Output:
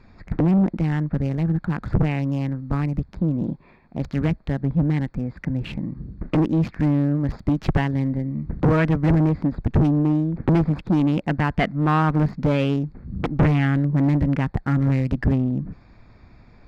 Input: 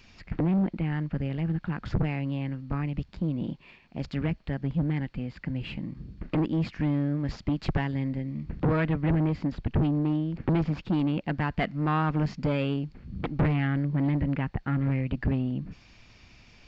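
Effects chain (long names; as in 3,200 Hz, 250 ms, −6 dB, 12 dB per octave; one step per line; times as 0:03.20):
adaptive Wiener filter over 15 samples
level +7 dB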